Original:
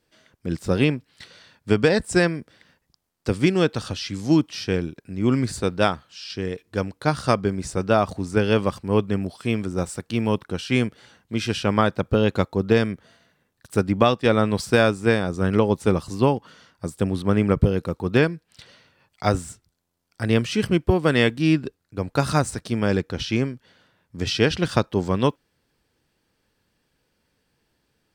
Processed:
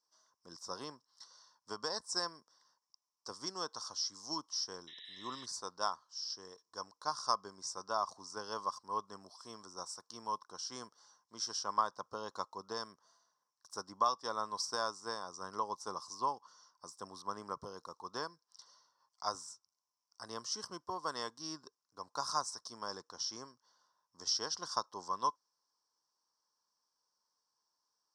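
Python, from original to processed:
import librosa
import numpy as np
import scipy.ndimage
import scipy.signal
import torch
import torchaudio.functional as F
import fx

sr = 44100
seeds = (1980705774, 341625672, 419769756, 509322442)

y = fx.spec_paint(x, sr, seeds[0], shape='noise', start_s=4.87, length_s=0.59, low_hz=1700.0, high_hz=4000.0, level_db=-29.0)
y = fx.double_bandpass(y, sr, hz=2400.0, octaves=2.4)
y = fx.high_shelf(y, sr, hz=4000.0, db=7.0)
y = y * librosa.db_to_amplitude(-2.5)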